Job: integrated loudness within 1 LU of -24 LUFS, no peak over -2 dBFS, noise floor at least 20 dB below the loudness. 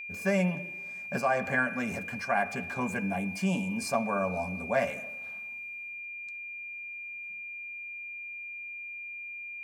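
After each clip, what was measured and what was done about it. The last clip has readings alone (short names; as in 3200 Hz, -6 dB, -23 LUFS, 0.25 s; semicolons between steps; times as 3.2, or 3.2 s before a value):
steady tone 2400 Hz; tone level -38 dBFS; loudness -32.5 LUFS; peak -13.5 dBFS; loudness target -24.0 LUFS
-> notch 2400 Hz, Q 30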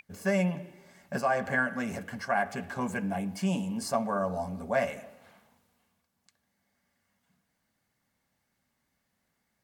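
steady tone none; loudness -31.0 LUFS; peak -13.5 dBFS; loudness target -24.0 LUFS
-> gain +7 dB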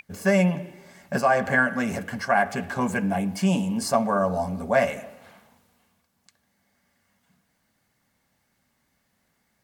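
loudness -24.0 LUFS; peak -6.5 dBFS; noise floor -72 dBFS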